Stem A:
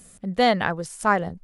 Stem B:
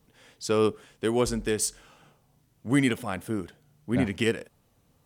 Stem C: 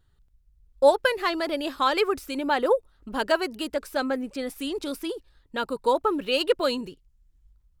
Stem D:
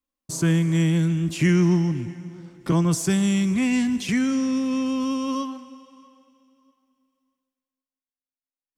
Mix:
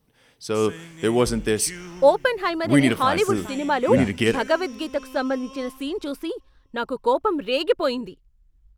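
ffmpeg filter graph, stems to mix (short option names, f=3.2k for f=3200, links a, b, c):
-filter_complex "[0:a]acompressor=threshold=-22dB:ratio=6,adelay=2400,volume=-15.5dB[a];[1:a]bandreject=f=7k:w=6,dynaudnorm=f=270:g=5:m=8dB,volume=-2.5dB[b];[2:a]highshelf=f=3.7k:g=-8,adelay=1200,volume=2.5dB[c];[3:a]highpass=f=940:p=1,adelay=250,volume=-9dB[d];[a][b][c][d]amix=inputs=4:normalize=0"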